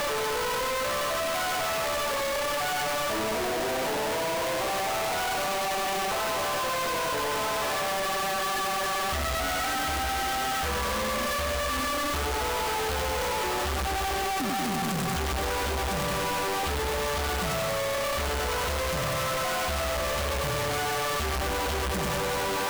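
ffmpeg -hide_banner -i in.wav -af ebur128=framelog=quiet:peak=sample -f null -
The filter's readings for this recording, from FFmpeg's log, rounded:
Integrated loudness:
  I:         -27.7 LUFS
  Threshold: -37.7 LUFS
Loudness range:
  LRA:         0.6 LU
  Threshold: -47.7 LUFS
  LRA low:   -28.0 LUFS
  LRA high:  -27.4 LUFS
Sample peak:
  Peak:      -28.3 dBFS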